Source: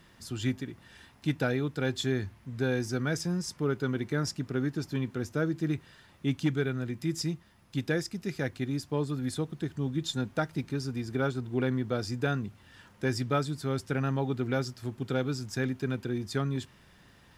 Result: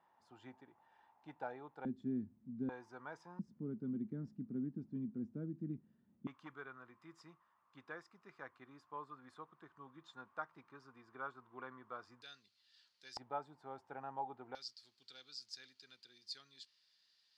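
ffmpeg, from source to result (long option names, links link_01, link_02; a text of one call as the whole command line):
ffmpeg -i in.wav -af "asetnsamples=nb_out_samples=441:pad=0,asendcmd='1.85 bandpass f 230;2.69 bandpass f 940;3.39 bandpass f 220;6.27 bandpass f 1100;12.22 bandpass f 4400;13.17 bandpass f 840;14.55 bandpass f 4500',bandpass=frequency=850:width_type=q:width=6.4:csg=0" out.wav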